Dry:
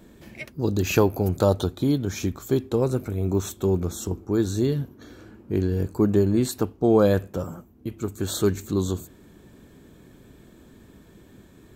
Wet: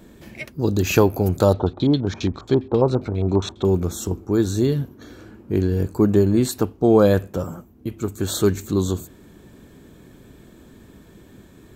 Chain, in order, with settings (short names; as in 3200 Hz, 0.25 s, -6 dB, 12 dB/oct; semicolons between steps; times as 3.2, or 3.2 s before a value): 1.53–3.65 LFO low-pass square 7.4 Hz 900–4000 Hz; gain +3.5 dB